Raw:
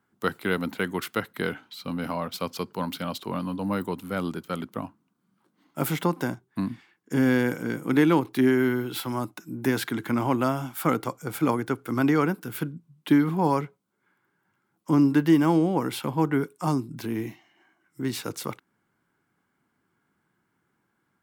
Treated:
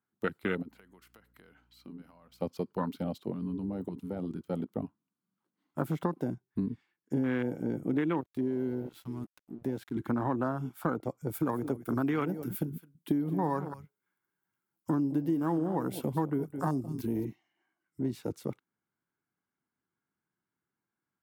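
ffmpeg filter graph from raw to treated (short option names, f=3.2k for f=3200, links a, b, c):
-filter_complex "[0:a]asettb=1/sr,asplit=3[a][b][c];[a]atrim=end=0.624[d];[b]atrim=start=0.62:end=2.42,asetpts=PTS-STARTPTS,afade=t=in:d=0.004:c=qsin,afade=t=out:st=1.796:d=0.004:c=qsin,acompressor=threshold=-37dB:ratio=16:attack=3.2:release=140:knee=1:detection=peak,equalizer=f=3.6k:t=o:w=0.23:g=-6,aeval=exprs='val(0)+0.00224*(sin(2*PI*60*n/s)+sin(2*PI*2*60*n/s)/2+sin(2*PI*3*60*n/s)/3+sin(2*PI*4*60*n/s)/4+sin(2*PI*5*60*n/s)/5)':c=same[e];[c]atrim=start=2.416[f];[d][e]acrossfade=d=0.004:c1=hsin:c2=qsin[g];[g][f]acrossfade=d=0.004:c1=qsin:c2=hsin,asettb=1/sr,asplit=3[h][i][j];[h]atrim=end=3.304[k];[i]atrim=start=3.3:end=4.46,asetpts=PTS-STARTPTS,afade=t=in:d=0.004:c=qsin,afade=t=out:st=1.156:d=0.004:c=qsin,equalizer=f=14k:w=5.6:g=-14.5,acompressor=threshold=-29dB:ratio=10:attack=3.2:release=140:knee=1:detection=peak[l];[j]atrim=start=4.456[m];[k][l]acrossfade=d=0.004:c1=hsin:c2=qsin[n];[n][m]acrossfade=d=0.004:c1=qsin:c2=hsin,asettb=1/sr,asplit=3[o][p][q];[o]atrim=end=8.214[r];[p]atrim=start=8.21:end=9.96,asetpts=PTS-STARTPTS,afade=t=in:d=0.004:c=qsin,afade=t=out:st=1.746:d=0.004:c=qsin,aeval=exprs='sgn(val(0))*max(abs(val(0))-0.0126,0)':c=same,acompressor=threshold=-36dB:ratio=1.5:attack=3.2:release=140:knee=1:detection=peak[s];[q]atrim=start=9.956[t];[r][s]acrossfade=d=0.004:c1=hsin:c2=qsin[u];[u][t]acrossfade=d=0.004:c1=qsin:c2=hsin,asettb=1/sr,asplit=3[v][w][x];[v]atrim=end=11.284[y];[w]atrim=start=11.28:end=17.25,asetpts=PTS-STARTPTS,afade=t=in:d=0.004:c=qsin,afade=t=out:st=5.966:d=0.004:c=qsin,aemphasis=mode=production:type=50kf,aecho=1:1:212:0.211,atrim=end_sample=263277[z];[x]atrim=start=17.246[aa];[y][z]acrossfade=d=0.004:c1=hsin:c2=qsin[ab];[ab][aa]acrossfade=d=0.004:c1=qsin:c2=hsin,afwtdn=0.0447,acompressor=threshold=-27dB:ratio=5"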